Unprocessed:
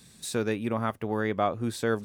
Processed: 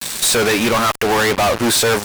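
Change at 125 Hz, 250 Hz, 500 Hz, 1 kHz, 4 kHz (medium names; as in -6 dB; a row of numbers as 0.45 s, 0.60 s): +7.0 dB, +9.5 dB, +12.0 dB, +13.5 dB, +23.5 dB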